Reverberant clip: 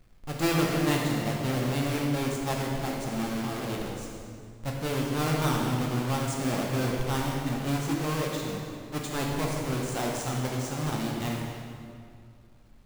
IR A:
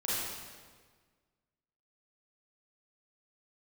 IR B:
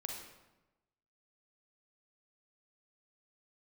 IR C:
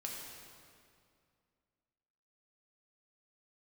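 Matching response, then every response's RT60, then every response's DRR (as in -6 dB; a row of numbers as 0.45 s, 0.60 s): C; 1.6 s, 1.0 s, 2.3 s; -9.0 dB, 0.5 dB, -2.0 dB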